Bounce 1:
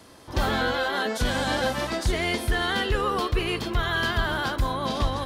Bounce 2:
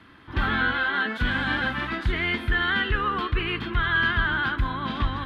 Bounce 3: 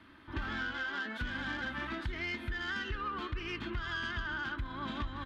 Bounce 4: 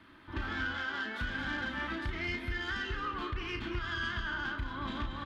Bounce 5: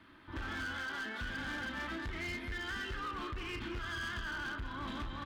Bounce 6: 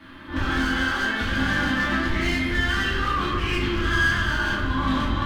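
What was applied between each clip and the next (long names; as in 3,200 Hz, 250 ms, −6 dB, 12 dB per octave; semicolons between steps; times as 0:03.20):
drawn EQ curve 310 Hz 0 dB, 560 Hz −13 dB, 1,500 Hz +6 dB, 3,400 Hz −1 dB, 5,700 Hz −21 dB, 8,500 Hz −23 dB, 12,000 Hz −20 dB
phase distortion by the signal itself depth 0.059 ms; comb filter 3.3 ms, depth 36%; downward compressor 5 to 1, threshold −28 dBFS, peak gain reduction 10 dB; level −6.5 dB
double-tracking delay 34 ms −6.5 dB; single-tap delay 229 ms −9.5 dB
hard clipping −34 dBFS, distortion −12 dB; level −2 dB
rectangular room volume 240 cubic metres, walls mixed, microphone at 2.3 metres; level +8.5 dB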